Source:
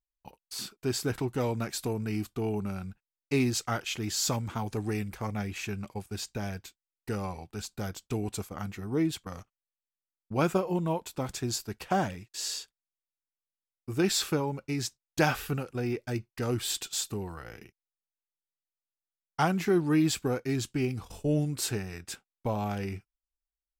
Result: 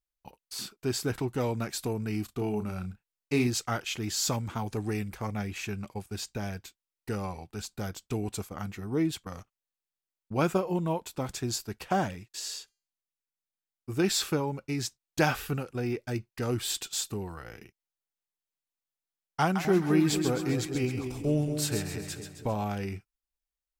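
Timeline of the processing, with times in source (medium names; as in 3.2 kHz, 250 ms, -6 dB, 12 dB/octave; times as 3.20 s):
2.25–3.47 s: doubling 33 ms -8.5 dB
12.39–13.89 s: feedback comb 400 Hz, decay 0.46 s, mix 30%
19.42–22.63 s: two-band feedback delay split 700 Hz, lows 226 ms, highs 133 ms, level -7 dB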